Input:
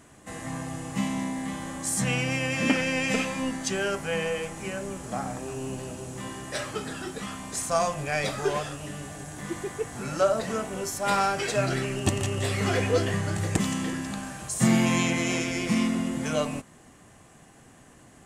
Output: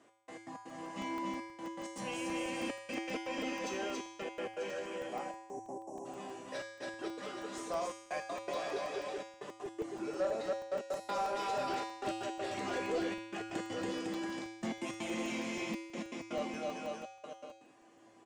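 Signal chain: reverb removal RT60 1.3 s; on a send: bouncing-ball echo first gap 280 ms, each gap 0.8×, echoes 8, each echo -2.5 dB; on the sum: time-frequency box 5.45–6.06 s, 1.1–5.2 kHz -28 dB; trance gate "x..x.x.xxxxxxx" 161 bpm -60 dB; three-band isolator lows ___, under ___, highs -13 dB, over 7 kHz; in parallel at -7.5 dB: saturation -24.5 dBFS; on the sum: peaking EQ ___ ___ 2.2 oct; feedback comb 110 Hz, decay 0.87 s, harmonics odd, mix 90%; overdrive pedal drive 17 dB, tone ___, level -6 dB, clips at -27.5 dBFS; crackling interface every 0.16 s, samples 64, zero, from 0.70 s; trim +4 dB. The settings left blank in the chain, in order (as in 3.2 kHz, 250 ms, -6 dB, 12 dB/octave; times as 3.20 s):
-20 dB, 210 Hz, 1.6 kHz, -10 dB, 1.5 kHz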